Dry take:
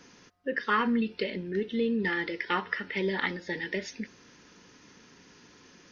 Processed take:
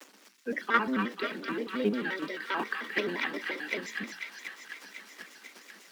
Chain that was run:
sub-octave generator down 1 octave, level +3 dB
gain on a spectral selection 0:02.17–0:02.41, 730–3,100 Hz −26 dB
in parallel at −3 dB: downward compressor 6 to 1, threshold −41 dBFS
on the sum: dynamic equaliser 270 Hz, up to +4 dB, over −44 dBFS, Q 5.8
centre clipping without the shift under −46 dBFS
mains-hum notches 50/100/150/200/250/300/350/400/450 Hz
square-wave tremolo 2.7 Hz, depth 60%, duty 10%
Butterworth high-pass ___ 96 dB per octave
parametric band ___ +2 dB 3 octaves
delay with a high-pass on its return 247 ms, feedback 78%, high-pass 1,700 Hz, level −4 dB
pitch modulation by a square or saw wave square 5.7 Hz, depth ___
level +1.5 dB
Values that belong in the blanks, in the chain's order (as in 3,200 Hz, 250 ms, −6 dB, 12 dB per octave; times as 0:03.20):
200 Hz, 920 Hz, 160 cents